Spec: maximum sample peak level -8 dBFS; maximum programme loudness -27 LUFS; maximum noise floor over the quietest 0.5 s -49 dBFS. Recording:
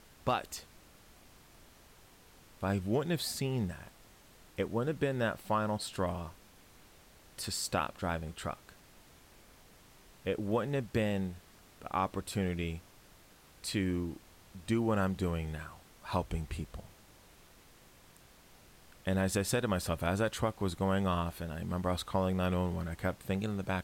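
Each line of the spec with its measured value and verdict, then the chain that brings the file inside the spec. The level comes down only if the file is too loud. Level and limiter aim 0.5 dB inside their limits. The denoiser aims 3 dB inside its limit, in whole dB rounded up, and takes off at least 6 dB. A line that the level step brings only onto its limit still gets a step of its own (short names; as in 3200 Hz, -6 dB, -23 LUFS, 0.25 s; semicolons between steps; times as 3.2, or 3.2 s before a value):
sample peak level -16.5 dBFS: OK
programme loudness -34.5 LUFS: OK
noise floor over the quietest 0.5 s -59 dBFS: OK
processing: none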